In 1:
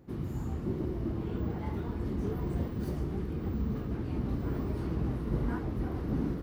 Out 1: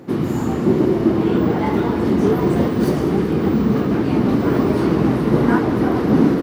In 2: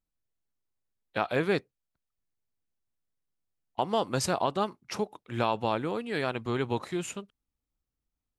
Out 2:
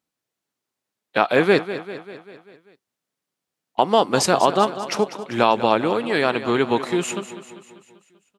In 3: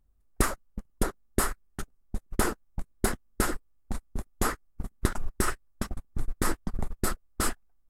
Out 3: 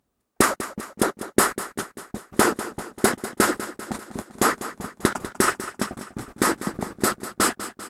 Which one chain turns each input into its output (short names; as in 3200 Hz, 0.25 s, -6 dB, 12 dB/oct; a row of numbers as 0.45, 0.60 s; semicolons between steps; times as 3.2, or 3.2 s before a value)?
HPF 200 Hz 12 dB/oct; high shelf 12000 Hz -7 dB; on a send: feedback echo 0.196 s, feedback 57%, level -13 dB; on the sum: normalise peaks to -1.5 dBFS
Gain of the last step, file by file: +20.5, +11.0, +10.0 dB